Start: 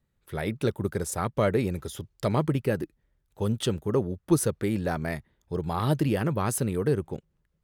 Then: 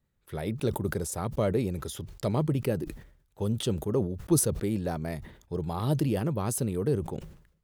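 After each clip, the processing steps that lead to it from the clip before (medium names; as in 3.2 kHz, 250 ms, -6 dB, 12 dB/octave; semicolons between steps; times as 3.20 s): dynamic bell 1.7 kHz, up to -8 dB, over -46 dBFS, Q 0.99; decay stretcher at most 91 dB/s; trim -2 dB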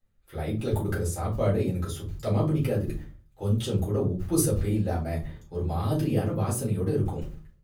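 simulated room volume 120 m³, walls furnished, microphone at 3.9 m; trim -8.5 dB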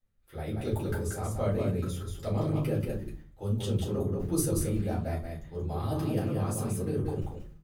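delay 183 ms -4 dB; trim -5 dB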